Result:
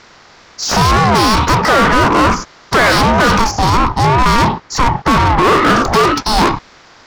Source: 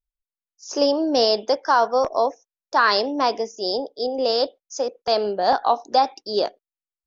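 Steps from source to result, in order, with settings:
compressor on every frequency bin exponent 0.6
0:03.51–0:05.58: high-shelf EQ 3,500 Hz −11 dB
mid-hump overdrive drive 33 dB, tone 3,000 Hz, clips at −2 dBFS
ring modulator whose carrier an LFO sweeps 430 Hz, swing 20%, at 2.1 Hz
level +1.5 dB

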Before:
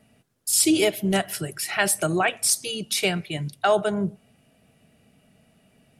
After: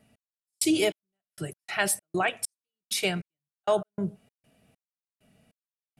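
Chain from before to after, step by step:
gate pattern "x...xx...x.xx.x" 98 BPM −60 dB
level −4 dB

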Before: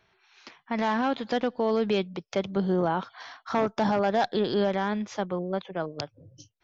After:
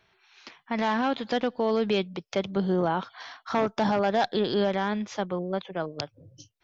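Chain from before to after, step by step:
parametric band 3,300 Hz +2.5 dB 1.4 octaves

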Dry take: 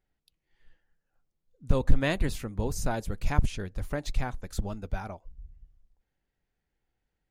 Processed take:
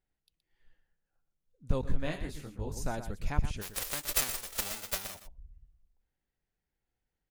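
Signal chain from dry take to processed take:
0:03.61–0:05.14: spectral envelope flattened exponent 0.1
single-tap delay 121 ms −10.5 dB
0:01.81–0:02.77: micro pitch shift up and down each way 40 cents
level −5.5 dB

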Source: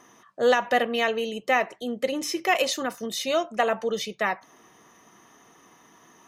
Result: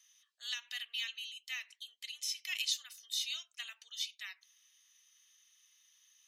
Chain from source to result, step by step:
four-pole ladder high-pass 2,700 Hz, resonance 35%

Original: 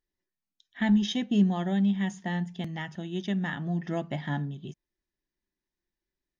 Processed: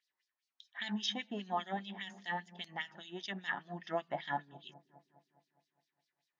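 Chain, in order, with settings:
auto-filter band-pass sine 5 Hz 790–5,000 Hz
on a send: delay with a low-pass on its return 205 ms, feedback 57%, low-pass 440 Hz, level −12.5 dB
on the sum: one half of a high-frequency compander encoder only
level +4.5 dB

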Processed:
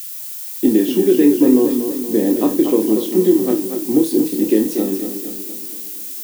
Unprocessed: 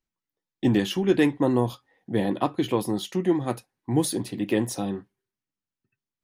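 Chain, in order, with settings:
high-pass filter 240 Hz 24 dB per octave
low shelf with overshoot 550 Hz +11.5 dB, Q 1.5
downward compressor 2.5 to 1, threshold −10 dBFS, peak gain reduction 6 dB
background noise violet −30 dBFS
flutter between parallel walls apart 4.7 metres, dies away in 0.26 s
feedback echo with a swinging delay time 235 ms, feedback 53%, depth 65 cents, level −8 dB
level −1 dB

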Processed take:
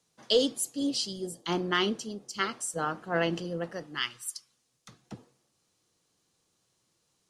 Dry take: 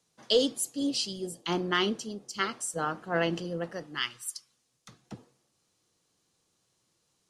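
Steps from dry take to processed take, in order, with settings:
0:00.94–0:01.49: parametric band 2,600 Hz −8.5 dB 0.27 octaves

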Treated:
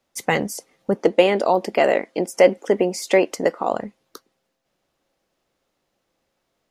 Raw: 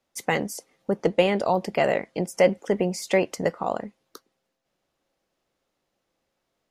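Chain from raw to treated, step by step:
0:00.95–0:03.73: low shelf with overshoot 200 Hz −10 dB, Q 1.5
level +4 dB

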